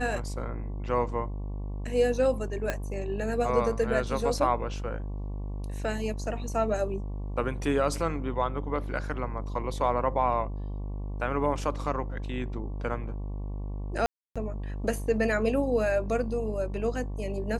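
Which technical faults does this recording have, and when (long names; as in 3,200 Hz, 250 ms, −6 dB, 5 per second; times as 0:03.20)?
mains buzz 50 Hz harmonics 23 −34 dBFS
0:02.70: click −14 dBFS
0:14.06–0:14.36: drop-out 296 ms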